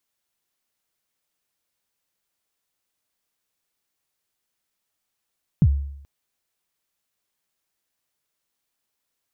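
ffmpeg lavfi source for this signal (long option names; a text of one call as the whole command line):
ffmpeg -f lavfi -i "aevalsrc='0.335*pow(10,-3*t/0.74)*sin(2*PI*(190*0.054/log(70/190)*(exp(log(70/190)*min(t,0.054)/0.054)-1)+70*max(t-0.054,0)))':duration=0.43:sample_rate=44100" out.wav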